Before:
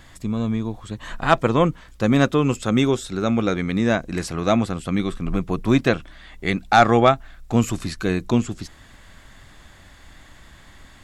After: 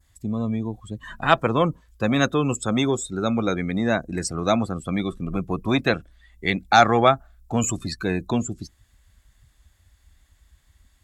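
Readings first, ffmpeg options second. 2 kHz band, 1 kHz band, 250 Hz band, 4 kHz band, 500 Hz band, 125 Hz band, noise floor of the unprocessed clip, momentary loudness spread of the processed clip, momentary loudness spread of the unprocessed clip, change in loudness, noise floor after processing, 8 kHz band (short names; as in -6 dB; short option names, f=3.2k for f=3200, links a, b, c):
0.0 dB, -0.5 dB, -3.5 dB, +1.0 dB, -2.0 dB, -3.5 dB, -48 dBFS, 11 LU, 11 LU, -2.0 dB, -61 dBFS, +4.5 dB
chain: -filter_complex "[0:a]adynamicequalizer=threshold=0.01:dfrequency=2900:dqfactor=1.1:tfrequency=2900:tqfactor=1.1:attack=5:release=100:ratio=0.375:range=2.5:mode=cutabove:tftype=bell,afftdn=nr=21:nf=-33,aemphasis=mode=production:type=75kf,acrossover=split=520|1700[a][b][c];[a]asoftclip=type=tanh:threshold=-16dB[d];[d][b][c]amix=inputs=3:normalize=0,highpass=42,volume=-1dB"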